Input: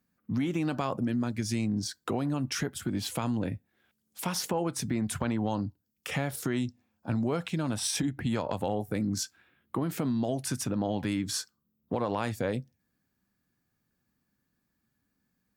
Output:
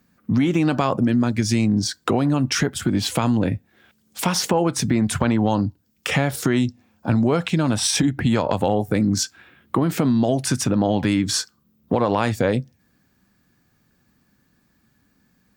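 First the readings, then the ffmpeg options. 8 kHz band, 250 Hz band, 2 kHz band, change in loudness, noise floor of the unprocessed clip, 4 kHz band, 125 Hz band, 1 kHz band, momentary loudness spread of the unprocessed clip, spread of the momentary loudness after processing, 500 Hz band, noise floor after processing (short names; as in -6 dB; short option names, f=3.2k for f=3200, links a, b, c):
+9.5 dB, +11.0 dB, +11.0 dB, +10.5 dB, -79 dBFS, +11.0 dB, +11.0 dB, +10.5 dB, 6 LU, 6 LU, +10.5 dB, -65 dBFS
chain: -filter_complex "[0:a]equalizer=f=12k:w=1.4:g=-8.5,asplit=2[a][b];[b]acompressor=threshold=-41dB:ratio=6,volume=0.5dB[c];[a][c]amix=inputs=2:normalize=0,volume=9dB"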